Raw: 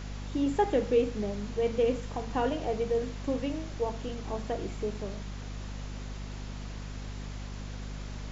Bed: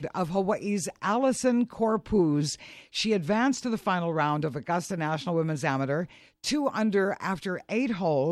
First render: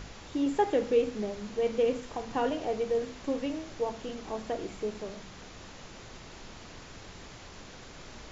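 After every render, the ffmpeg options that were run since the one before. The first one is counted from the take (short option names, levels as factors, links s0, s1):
-af "bandreject=f=50:t=h:w=6,bandreject=f=100:t=h:w=6,bandreject=f=150:t=h:w=6,bandreject=f=200:t=h:w=6,bandreject=f=250:t=h:w=6"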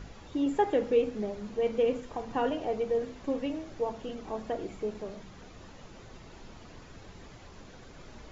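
-af "afftdn=nr=8:nf=-48"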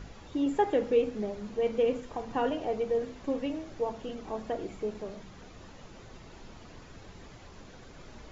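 -af anull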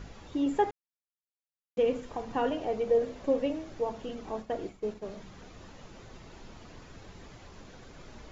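-filter_complex "[0:a]asettb=1/sr,asplit=3[s0][s1][s2];[s0]atrim=end=2.874[s3];[s1]atrim=start=2.87:end=3.53,asetpts=PTS-STARTPTS,afade=t=in:d=0.004:c=qsin,afade=t=out:st=0.656:d=0.004:c=qsin,equalizer=f=570:w=2.2:g=7.5[s4];[s2]atrim=start=3.526[s5];[s3][s4]acrossfade=d=0.004:c1=hsin:c2=qsin[s6];[s6][s5]acrossfade=d=0.004:c1=qsin:c2=hsin,asplit=3[s7][s8][s9];[s7]afade=t=out:st=4.39:d=0.02[s10];[s8]agate=range=0.0224:threshold=0.0126:ratio=3:release=100:detection=peak,afade=t=in:st=4.39:d=0.02,afade=t=out:st=5.04:d=0.02[s11];[s9]afade=t=in:st=5.04:d=0.02[s12];[s10][s11][s12]amix=inputs=3:normalize=0,asplit=3[s13][s14][s15];[s13]atrim=end=0.71,asetpts=PTS-STARTPTS,afade=t=out:st=0.706:d=0.004:c=hsin[s16];[s14]atrim=start=0.71:end=1.77,asetpts=PTS-STARTPTS,volume=0[s17];[s15]atrim=start=1.77,asetpts=PTS-STARTPTS,afade=t=in:d=0.004:c=hsin[s18];[s16][s17][s18]concat=n=3:v=0:a=1"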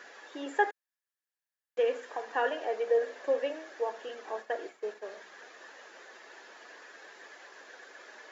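-af "highpass=f=410:w=0.5412,highpass=f=410:w=1.3066,equalizer=f=1700:t=o:w=0.31:g=14"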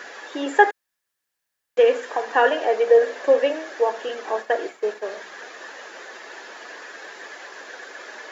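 -af "volume=3.98"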